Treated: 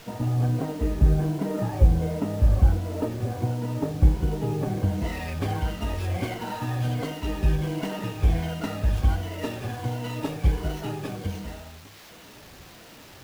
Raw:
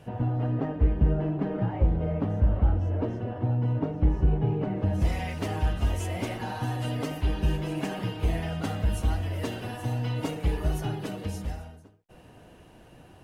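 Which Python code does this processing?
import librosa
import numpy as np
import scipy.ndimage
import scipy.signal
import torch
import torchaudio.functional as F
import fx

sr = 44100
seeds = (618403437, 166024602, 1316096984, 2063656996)

y = fx.spec_ripple(x, sr, per_octave=1.9, drift_hz=-1.4, depth_db=13)
y = fx.quant_dither(y, sr, seeds[0], bits=8, dither='triangular')
y = fx.running_max(y, sr, window=5)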